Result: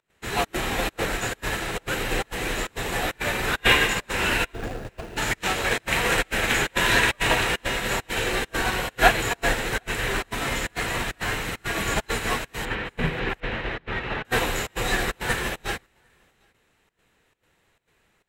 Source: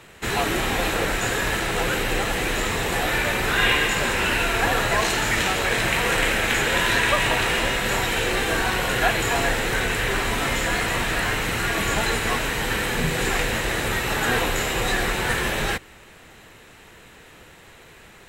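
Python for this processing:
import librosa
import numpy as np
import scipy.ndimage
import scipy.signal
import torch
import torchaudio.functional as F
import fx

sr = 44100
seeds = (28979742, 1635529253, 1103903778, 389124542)

p1 = fx.median_filter(x, sr, points=41, at=(4.52, 5.16), fade=0.02)
p2 = fx.lowpass(p1, sr, hz=3300.0, slope=24, at=(12.65, 14.25))
p3 = np.clip(10.0 ** (26.0 / 20.0) * p2, -1.0, 1.0) / 10.0 ** (26.0 / 20.0)
p4 = p2 + (p3 * librosa.db_to_amplitude(-12.0))
p5 = fx.volume_shaper(p4, sr, bpm=135, per_beat=1, depth_db=-20, release_ms=96.0, shape='slow start')
p6 = p5 + 10.0 ** (-18.5 / 20.0) * np.pad(p5, (int(751 * sr / 1000.0), 0))[:len(p5)]
p7 = fx.upward_expand(p6, sr, threshold_db=-33.0, expansion=2.5)
y = p7 * librosa.db_to_amplitude(5.0)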